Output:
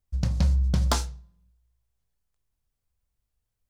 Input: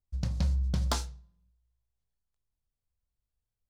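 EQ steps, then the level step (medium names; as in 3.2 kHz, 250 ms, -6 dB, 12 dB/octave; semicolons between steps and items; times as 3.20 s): peaking EQ 4 kHz -2 dB; +6.0 dB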